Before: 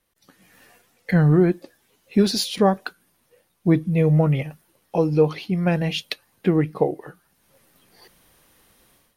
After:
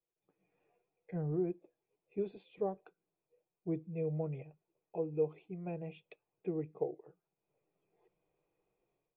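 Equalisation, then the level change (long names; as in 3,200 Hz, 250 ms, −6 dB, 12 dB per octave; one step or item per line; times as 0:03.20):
formant resonators in series e
phaser with its sweep stopped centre 360 Hz, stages 8
−1.5 dB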